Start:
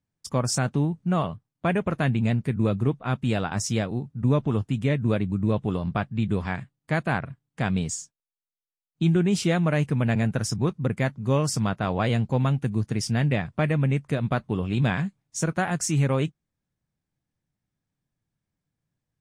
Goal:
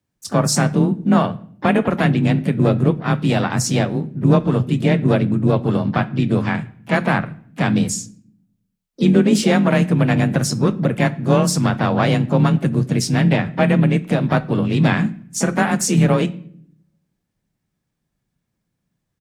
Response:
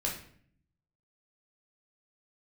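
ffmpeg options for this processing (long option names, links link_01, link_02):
-filter_complex "[0:a]asplit=2[link_01][link_02];[1:a]atrim=start_sample=2205[link_03];[link_02][link_03]afir=irnorm=-1:irlink=0,volume=-15dB[link_04];[link_01][link_04]amix=inputs=2:normalize=0,afreqshift=24,asplit=4[link_05][link_06][link_07][link_08];[link_06]asetrate=35002,aresample=44100,atempo=1.25992,volume=-12dB[link_09];[link_07]asetrate=55563,aresample=44100,atempo=0.793701,volume=-11dB[link_10];[link_08]asetrate=66075,aresample=44100,atempo=0.66742,volume=-17dB[link_11];[link_05][link_09][link_10][link_11]amix=inputs=4:normalize=0,volume=5.5dB"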